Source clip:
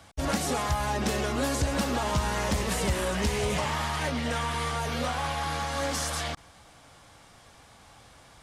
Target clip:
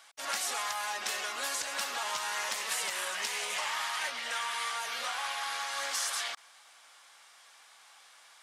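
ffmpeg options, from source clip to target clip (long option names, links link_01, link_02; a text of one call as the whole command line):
ffmpeg -i in.wav -af "highpass=1200" out.wav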